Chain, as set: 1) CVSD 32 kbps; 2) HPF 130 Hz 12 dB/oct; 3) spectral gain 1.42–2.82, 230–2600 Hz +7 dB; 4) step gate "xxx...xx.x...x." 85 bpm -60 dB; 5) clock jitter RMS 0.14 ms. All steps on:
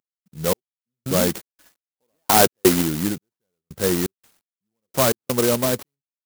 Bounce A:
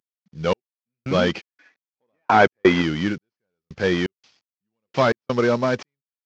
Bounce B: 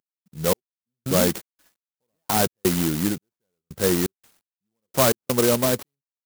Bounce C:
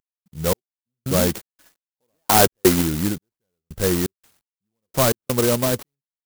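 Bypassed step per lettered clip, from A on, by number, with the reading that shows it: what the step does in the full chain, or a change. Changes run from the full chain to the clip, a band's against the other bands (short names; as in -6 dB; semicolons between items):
5, 2 kHz band +5.0 dB; 3, 1 kHz band -2.5 dB; 2, 125 Hz band +3.0 dB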